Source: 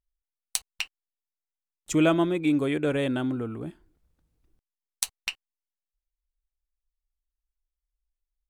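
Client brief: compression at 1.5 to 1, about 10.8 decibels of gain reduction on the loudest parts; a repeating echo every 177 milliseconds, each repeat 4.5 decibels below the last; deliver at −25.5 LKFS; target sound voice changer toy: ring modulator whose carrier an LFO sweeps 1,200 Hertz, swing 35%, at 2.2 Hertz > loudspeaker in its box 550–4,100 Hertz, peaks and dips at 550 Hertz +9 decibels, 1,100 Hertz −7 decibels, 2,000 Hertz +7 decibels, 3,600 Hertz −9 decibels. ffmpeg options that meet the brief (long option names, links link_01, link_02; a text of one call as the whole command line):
ffmpeg -i in.wav -af "acompressor=threshold=-49dB:ratio=1.5,aecho=1:1:177|354|531|708|885|1062|1239|1416|1593:0.596|0.357|0.214|0.129|0.0772|0.0463|0.0278|0.0167|0.01,aeval=exprs='val(0)*sin(2*PI*1200*n/s+1200*0.35/2.2*sin(2*PI*2.2*n/s))':channel_layout=same,highpass=550,equalizer=frequency=550:width_type=q:width=4:gain=9,equalizer=frequency=1100:width_type=q:width=4:gain=-7,equalizer=frequency=2000:width_type=q:width=4:gain=7,equalizer=frequency=3600:width_type=q:width=4:gain=-9,lowpass=frequency=4100:width=0.5412,lowpass=frequency=4100:width=1.3066,volume=10.5dB" out.wav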